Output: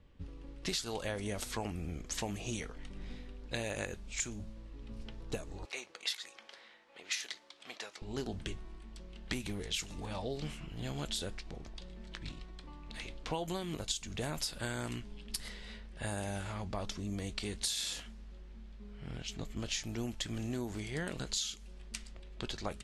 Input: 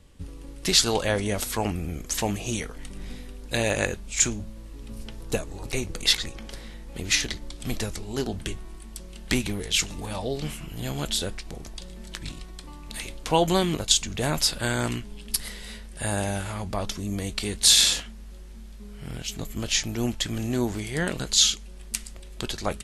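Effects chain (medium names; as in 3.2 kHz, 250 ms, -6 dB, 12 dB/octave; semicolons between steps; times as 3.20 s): 5.65–8.02 s: high-pass 740 Hz 12 dB/octave; level-controlled noise filter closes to 3 kHz, open at -20.5 dBFS; compression 16:1, threshold -25 dBFS, peak gain reduction 13 dB; trim -7.5 dB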